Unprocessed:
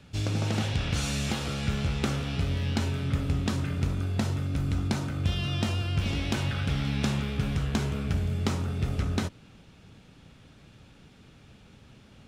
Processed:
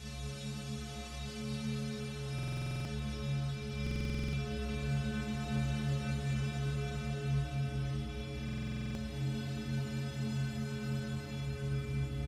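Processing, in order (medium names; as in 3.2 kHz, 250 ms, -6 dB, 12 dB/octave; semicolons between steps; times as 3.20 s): fade-in on the opening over 1.89 s; Paulstretch 5.9×, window 1.00 s, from 1.08 s; inharmonic resonator 64 Hz, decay 0.85 s, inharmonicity 0.03; loudspeakers at several distances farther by 17 m -4 dB, 79 m -3 dB; buffer glitch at 2.34/3.82/8.44 s, samples 2048, times 10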